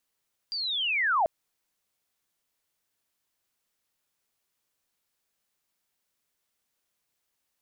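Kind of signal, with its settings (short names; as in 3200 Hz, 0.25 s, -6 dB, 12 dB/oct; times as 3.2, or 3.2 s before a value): chirp linear 4800 Hz -> 600 Hz -29.5 dBFS -> -20 dBFS 0.74 s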